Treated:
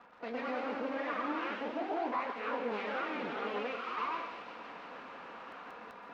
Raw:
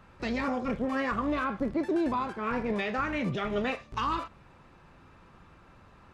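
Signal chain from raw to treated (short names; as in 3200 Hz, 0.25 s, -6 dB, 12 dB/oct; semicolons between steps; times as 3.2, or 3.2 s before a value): minimum comb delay 4.2 ms; HPF 440 Hz 12 dB/oct; high shelf 2400 Hz -10.5 dB; reverse; upward compressor, threshold -33 dBFS; reverse; crackle 130/s -45 dBFS; air absorption 220 m; thin delay 0.163 s, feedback 79%, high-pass 3000 Hz, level -4 dB; echoes that change speed 0.122 s, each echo +1 st, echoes 3; on a send at -10 dB: reverb, pre-delay 0.116 s; on the sum: gain -2.5 dB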